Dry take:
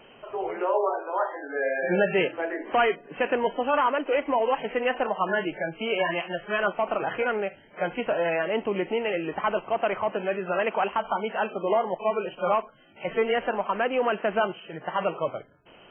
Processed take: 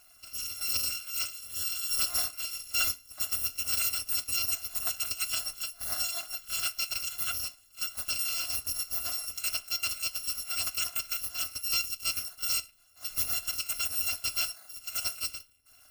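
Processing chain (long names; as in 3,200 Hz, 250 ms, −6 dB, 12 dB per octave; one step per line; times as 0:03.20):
samples in bit-reversed order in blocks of 256 samples
flanger 0.17 Hz, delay 6.9 ms, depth 6.4 ms, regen −69%
level −2 dB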